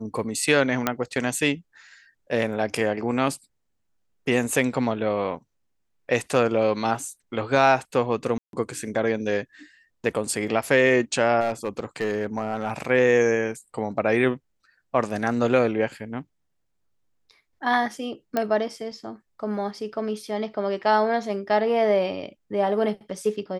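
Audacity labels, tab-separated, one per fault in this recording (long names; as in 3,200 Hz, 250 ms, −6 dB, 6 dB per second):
0.870000	0.870000	click −6 dBFS
8.380000	8.530000	drop-out 152 ms
11.400000	12.720000	clipping −19 dBFS
18.370000	18.370000	click −11 dBFS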